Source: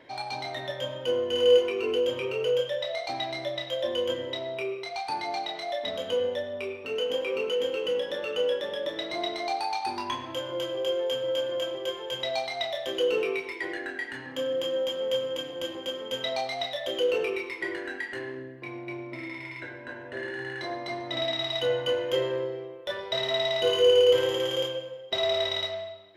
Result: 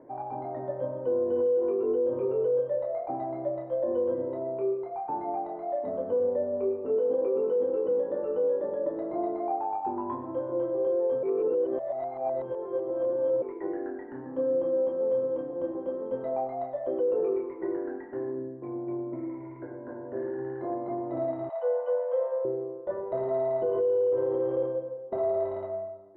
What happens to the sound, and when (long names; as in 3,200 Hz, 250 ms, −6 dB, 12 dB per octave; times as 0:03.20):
0:06.35–0:07.40: parametric band 420 Hz +3.5 dB 1.8 octaves
0:11.23–0:13.42: reverse
0:21.49–0:22.45: Butterworth high-pass 490 Hz 96 dB per octave
whole clip: low-pass filter 1,100 Hz 24 dB per octave; parametric band 320 Hz +8 dB 2 octaves; brickwall limiter −17.5 dBFS; level −2.5 dB